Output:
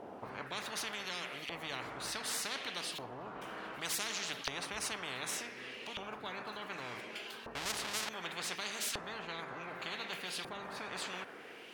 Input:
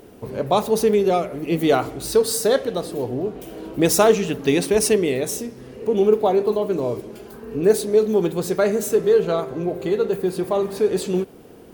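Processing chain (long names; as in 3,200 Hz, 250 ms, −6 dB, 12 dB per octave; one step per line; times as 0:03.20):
0:07.55–0:08.09: each half-wave held at its own peak
auto-filter band-pass saw up 0.67 Hz 620–3,500 Hz
every bin compressed towards the loudest bin 10 to 1
level −6.5 dB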